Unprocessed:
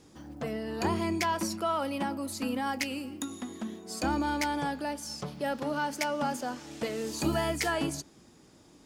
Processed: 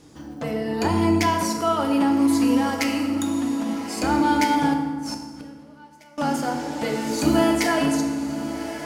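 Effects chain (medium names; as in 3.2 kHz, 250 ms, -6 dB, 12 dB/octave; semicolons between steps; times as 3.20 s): echo that smears into a reverb 1180 ms, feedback 56%, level -11.5 dB; 4.73–6.18 s: inverted gate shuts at -27 dBFS, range -26 dB; FDN reverb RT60 1.5 s, low-frequency decay 1.5×, high-frequency decay 0.65×, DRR 2 dB; trim +5 dB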